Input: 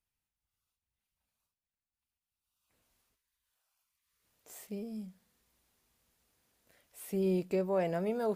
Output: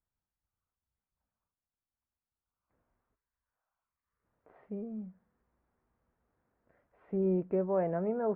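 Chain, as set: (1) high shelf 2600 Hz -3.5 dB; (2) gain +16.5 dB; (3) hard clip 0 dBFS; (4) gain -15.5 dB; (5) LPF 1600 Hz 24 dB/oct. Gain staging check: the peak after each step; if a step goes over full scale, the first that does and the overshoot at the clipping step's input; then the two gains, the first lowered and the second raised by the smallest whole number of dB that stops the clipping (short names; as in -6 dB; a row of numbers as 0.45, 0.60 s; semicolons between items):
-22.0, -5.5, -5.5, -21.0, -21.0 dBFS; no overload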